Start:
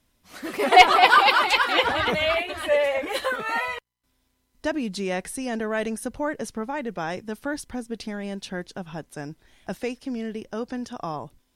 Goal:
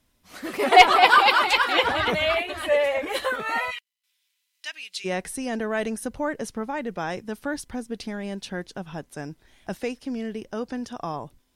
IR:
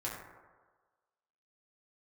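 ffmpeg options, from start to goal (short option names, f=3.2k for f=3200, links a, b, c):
-filter_complex "[0:a]asplit=3[a][b][c];[a]afade=t=out:st=3.7:d=0.02[d];[b]highpass=f=2.6k:t=q:w=1.7,afade=t=in:st=3.7:d=0.02,afade=t=out:st=5.04:d=0.02[e];[c]afade=t=in:st=5.04:d=0.02[f];[d][e][f]amix=inputs=3:normalize=0"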